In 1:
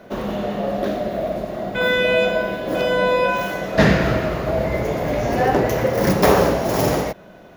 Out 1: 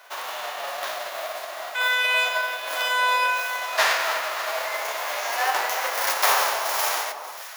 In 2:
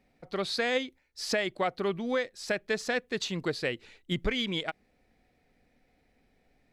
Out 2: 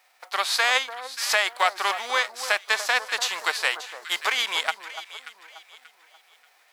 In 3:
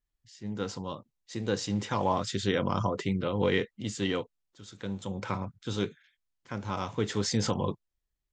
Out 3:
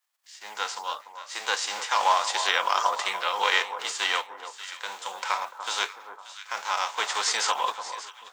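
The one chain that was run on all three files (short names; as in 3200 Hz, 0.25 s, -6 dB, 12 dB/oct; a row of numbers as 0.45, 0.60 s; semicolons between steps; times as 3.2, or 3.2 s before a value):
spectral whitening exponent 0.6; ladder high-pass 700 Hz, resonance 30%; on a send: echo with dull and thin repeats by turns 0.292 s, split 1300 Hz, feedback 58%, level -9.5 dB; on the sum: normalise peaks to -6 dBFS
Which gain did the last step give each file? +2.5, +15.0, +13.0 dB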